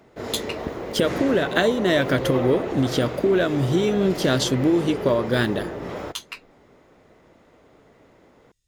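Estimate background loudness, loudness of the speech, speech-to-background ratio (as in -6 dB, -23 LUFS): -30.0 LUFS, -22.0 LUFS, 8.0 dB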